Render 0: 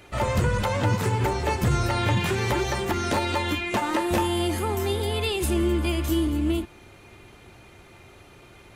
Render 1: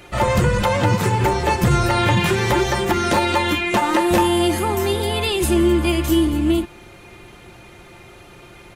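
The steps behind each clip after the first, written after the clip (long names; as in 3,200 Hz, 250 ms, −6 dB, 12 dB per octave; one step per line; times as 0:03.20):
comb filter 5.7 ms, depth 31%
level +6 dB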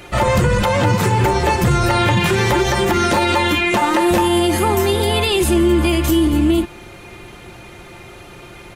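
boost into a limiter +11 dB
level −6 dB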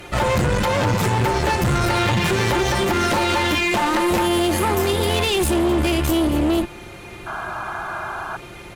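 asymmetric clip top −23 dBFS, bottom −11.5 dBFS
sound drawn into the spectrogram noise, 0:07.26–0:08.37, 610–1,700 Hz −29 dBFS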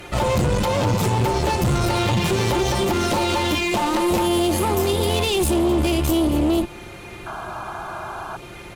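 dynamic equaliser 1,700 Hz, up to −8 dB, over −38 dBFS, Q 1.5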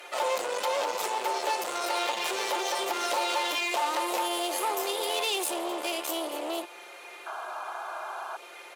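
high-pass filter 490 Hz 24 dB per octave
level −5 dB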